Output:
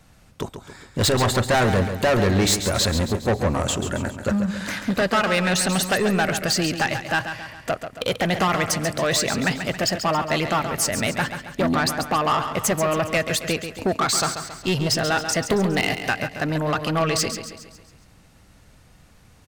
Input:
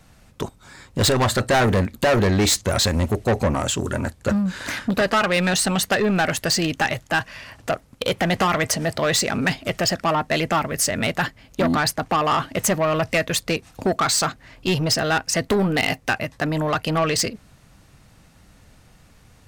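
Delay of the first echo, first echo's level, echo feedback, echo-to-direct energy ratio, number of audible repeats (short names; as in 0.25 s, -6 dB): 0.137 s, -9.0 dB, 49%, -8.0 dB, 5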